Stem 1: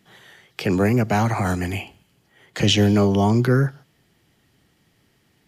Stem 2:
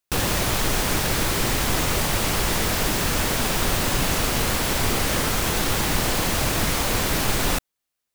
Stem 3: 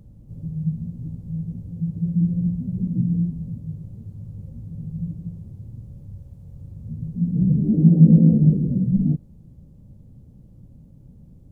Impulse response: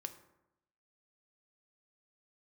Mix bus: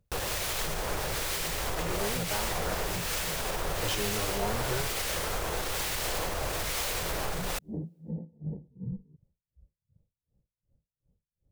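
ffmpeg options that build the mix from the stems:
-filter_complex "[0:a]asplit=2[s0][s1];[s1]adelay=2.8,afreqshift=2.5[s2];[s0][s2]amix=inputs=2:normalize=1,adelay=1200,volume=0.266[s3];[1:a]acrossover=split=1600[s4][s5];[s4]aeval=exprs='val(0)*(1-0.5/2+0.5/2*cos(2*PI*1.1*n/s))':c=same[s6];[s5]aeval=exprs='val(0)*(1-0.5/2-0.5/2*cos(2*PI*1.1*n/s))':c=same[s7];[s6][s7]amix=inputs=2:normalize=0,volume=0.668[s8];[2:a]afwtdn=0.0501,alimiter=limit=0.251:level=0:latency=1:release=223,aeval=exprs='val(0)*pow(10,-32*(0.5-0.5*cos(2*PI*2.7*n/s))/20)':c=same,volume=0.708[s9];[s8][s9]amix=inputs=2:normalize=0,alimiter=limit=0.0841:level=0:latency=1:release=79,volume=1[s10];[s3][s10]amix=inputs=2:normalize=0,equalizer=f=125:t=o:w=1:g=-4,equalizer=f=250:t=o:w=1:g=-10,equalizer=f=500:t=o:w=1:g=5"

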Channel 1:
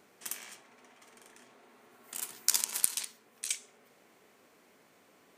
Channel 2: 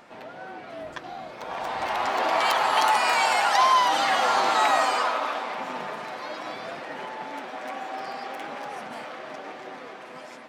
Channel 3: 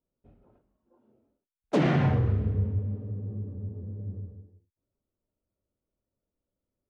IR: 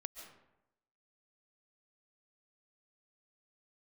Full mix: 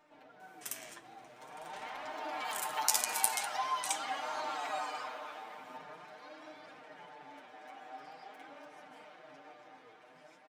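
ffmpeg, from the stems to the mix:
-filter_complex "[0:a]adelay=400,volume=1.19[s0];[1:a]aecho=1:1:6.6:0.72,flanger=delay=6.6:depth=8.5:regen=81:speed=0.42:shape=sinusoidal,volume=0.316[s1];[2:a]acompressor=threshold=0.0251:ratio=2.5,highpass=1400,volume=0.668[s2];[s0][s1][s2]amix=inputs=3:normalize=0,bandreject=f=50:t=h:w=6,bandreject=f=100:t=h:w=6,bandreject=f=150:t=h:w=6,flanger=delay=3.2:depth=5.8:regen=42:speed=0.46:shape=sinusoidal,bandreject=f=4500:w=29"

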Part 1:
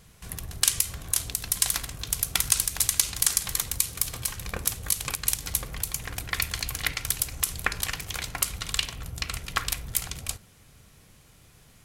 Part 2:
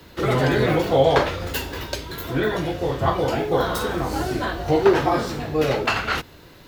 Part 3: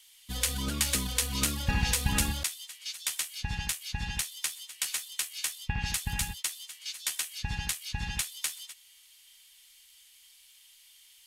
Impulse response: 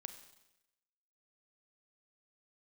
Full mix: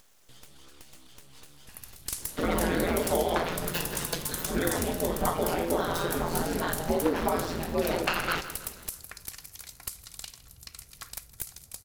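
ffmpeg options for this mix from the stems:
-filter_complex "[0:a]aexciter=amount=3.3:drive=5:freq=4200,aeval=exprs='clip(val(0),-1,0.2)':c=same,adelay=1450,volume=0.119,asplit=2[s0][s1];[s1]volume=0.119[s2];[1:a]aeval=exprs='val(0)*sin(2*PI*85*n/s)':c=same,acompressor=threshold=0.1:ratio=6,adelay=2200,volume=0.794,asplit=2[s3][s4];[s4]volume=0.211[s5];[2:a]lowpass=11000,acrossover=split=1000|3800[s6][s7][s8];[s6]acompressor=threshold=0.0158:ratio=4[s9];[s7]acompressor=threshold=0.00891:ratio=4[s10];[s8]acompressor=threshold=0.0178:ratio=4[s11];[s9][s10][s11]amix=inputs=3:normalize=0,aeval=exprs='abs(val(0))':c=same,volume=0.178[s12];[s2][s5]amix=inputs=2:normalize=0,aecho=0:1:161|322|483|644|805|966:1|0.45|0.202|0.0911|0.041|0.0185[s13];[s0][s3][s12][s13]amix=inputs=4:normalize=0,acompressor=mode=upward:threshold=0.00447:ratio=2.5"

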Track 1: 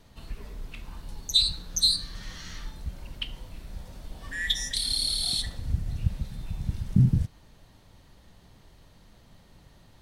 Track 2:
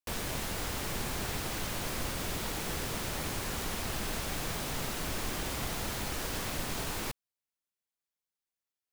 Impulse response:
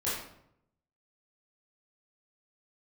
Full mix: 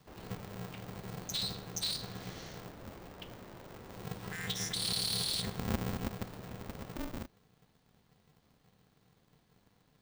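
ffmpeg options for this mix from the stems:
-filter_complex "[0:a]equalizer=f=220:t=o:w=1:g=-8,alimiter=limit=0.106:level=0:latency=1:release=97,volume=1.88,afade=t=out:st=2.43:d=0.25:silence=0.334965,afade=t=in:st=3.8:d=0.3:silence=0.237137,afade=t=out:st=5.74:d=0.7:silence=0.334965[s0];[1:a]asoftclip=type=tanh:threshold=0.0376,bandpass=f=330:t=q:w=0.57:csg=0,volume=0.316,asplit=2[s1][s2];[s2]volume=0.178[s3];[2:a]atrim=start_sample=2205[s4];[s3][s4]afir=irnorm=-1:irlink=0[s5];[s0][s1][s5]amix=inputs=3:normalize=0,acrossover=split=180|3000[s6][s7][s8];[s7]acompressor=threshold=0.00631:ratio=6[s9];[s6][s9][s8]amix=inputs=3:normalize=0,aeval=exprs='val(0)*sgn(sin(2*PI*150*n/s))':c=same"

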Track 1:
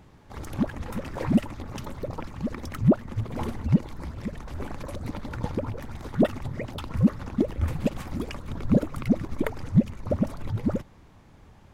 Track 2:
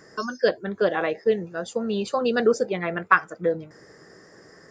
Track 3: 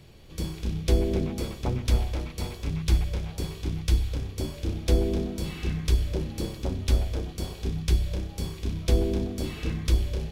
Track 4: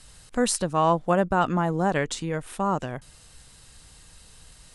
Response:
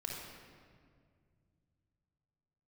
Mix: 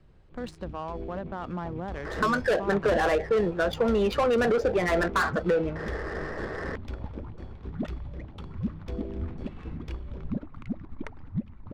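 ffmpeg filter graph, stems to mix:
-filter_complex "[0:a]equalizer=f=125:t=o:w=1:g=-5,equalizer=f=500:t=o:w=1:g=-11,equalizer=f=4000:t=o:w=1:g=8,adelay=1600,volume=0.473[s0];[1:a]highshelf=f=3900:g=-7.5,asplit=2[s1][s2];[s2]highpass=f=720:p=1,volume=17.8,asoftclip=type=tanh:threshold=0.631[s3];[s1][s3]amix=inputs=2:normalize=0,lowpass=f=6100:p=1,volume=0.501,alimiter=limit=0.251:level=0:latency=1:release=25,adelay=2050,volume=1.26[s4];[2:a]volume=0.335[s5];[3:a]volume=0.422[s6];[s0][s4]amix=inputs=2:normalize=0,highshelf=f=3100:g=-8.5,acompressor=threshold=0.0562:ratio=2.5,volume=1[s7];[s5][s6]amix=inputs=2:normalize=0,acrossover=split=250|3000[s8][s9][s10];[s8]acompressor=threshold=0.0251:ratio=6[s11];[s11][s9][s10]amix=inputs=3:normalize=0,alimiter=level_in=1.12:limit=0.0631:level=0:latency=1:release=50,volume=0.891,volume=1[s12];[s7][s12]amix=inputs=2:normalize=0,adynamicsmooth=sensitivity=5:basefreq=1500"

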